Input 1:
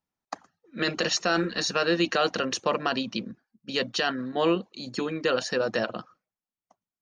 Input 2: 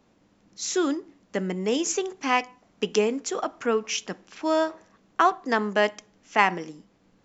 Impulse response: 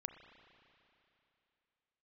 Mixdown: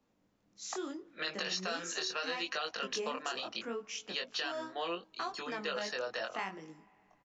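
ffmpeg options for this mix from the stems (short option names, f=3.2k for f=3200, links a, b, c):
-filter_complex "[0:a]acrossover=split=500 5900:gain=0.1 1 0.2[a][b][c];[a][b][c]amix=inputs=3:normalize=0,adelay=400,volume=-0.5dB[d];[1:a]volume=-11dB,asplit=2[e][f];[f]volume=-13.5dB[g];[2:a]atrim=start_sample=2205[h];[g][h]afir=irnorm=-1:irlink=0[i];[d][e][i]amix=inputs=3:normalize=0,acrossover=split=190|3000[j][k][l];[k]acompressor=threshold=-38dB:ratio=1.5[m];[j][m][l]amix=inputs=3:normalize=0,flanger=delay=19:depth=5.5:speed=0.74,acompressor=threshold=-32dB:ratio=6"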